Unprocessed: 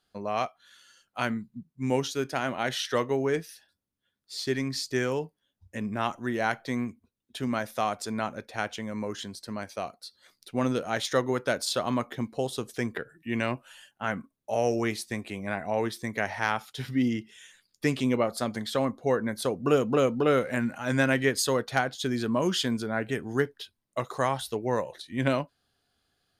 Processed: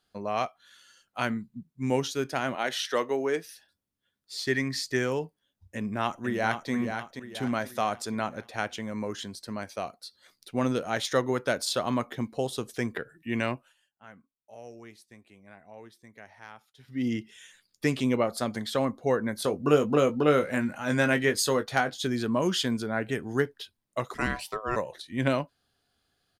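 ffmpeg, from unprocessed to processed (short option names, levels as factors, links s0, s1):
-filter_complex "[0:a]asettb=1/sr,asplit=3[s0][s1][s2];[s0]atrim=end=2.554[s3];[s1]atrim=start=2.55:end=3.45,asetpts=PTS-STARTPTS,afade=t=in:d=0.004:c=qsin,afade=t=out:st=0.896:d=0.004:c=qsin,highpass=280[s4];[s2]atrim=start=3.446[s5];[s3][s4]acrossfade=d=0.004:c1=hsin:c2=qsin[s6];[s6][s5]acrossfade=d=0.004:c1=qsin:c2=hsin,asettb=1/sr,asplit=3[s7][s8][s9];[s7]atrim=end=4.464[s10];[s8]atrim=start=4.46:end=4.96,asetpts=PTS-STARTPTS,afade=t=in:d=0.004:c=qsin,afade=t=out:st=0.496:d=0.004:c=qsin,equalizer=f=1900:w=4:g=9[s11];[s9]atrim=start=4.956[s12];[s10][s11]acrossfade=d=0.004:c1=hsin:c2=qsin[s13];[s13][s12]acrossfade=d=0.004:c1=qsin:c2=hsin,asplit=2[s14][s15];[s15]afade=t=in:st=5.76:d=0.01,afade=t=out:st=6.71:d=0.01,aecho=0:1:480|960|1440|1920|2400:0.446684|0.201008|0.0904534|0.040704|0.0183168[s16];[s14][s16]amix=inputs=2:normalize=0,asettb=1/sr,asplit=3[s17][s18][s19];[s17]atrim=end=19.364[s20];[s18]atrim=start=19.36:end=22.07,asetpts=PTS-STARTPTS,afade=t=in:d=0.004:c=qsin,afade=t=out:st=2.706:d=0.004:c=qsin,asplit=2[s21][s22];[s22]adelay=20,volume=0.355[s23];[s21][s23]amix=inputs=2:normalize=0,atrim=end_sample=119511[s24];[s19]atrim=start=22.066[s25];[s20][s24]acrossfade=d=0.004:c1=hsin:c2=qsin[s26];[s26][s25]acrossfade=d=0.004:c1=qsin:c2=hsin,asplit=3[s27][s28][s29];[s27]afade=t=out:st=24.13:d=0.02[s30];[s28]aeval=exprs='val(0)*sin(2*PI*860*n/s)':c=same,afade=t=in:st=24.13:d=0.02,afade=t=out:st=24.75:d=0.02[s31];[s29]afade=t=in:st=24.75:d=0.02[s32];[s30][s31][s32]amix=inputs=3:normalize=0,asplit=3[s33][s34][s35];[s33]atrim=end=13.74,asetpts=PTS-STARTPTS,afade=t=out:st=13.48:d=0.26:silence=0.105925[s36];[s34]atrim=start=13.74:end=16.87,asetpts=PTS-STARTPTS,volume=0.106[s37];[s35]atrim=start=16.87,asetpts=PTS-STARTPTS,afade=t=in:d=0.26:silence=0.105925[s38];[s36][s37][s38]concat=n=3:v=0:a=1"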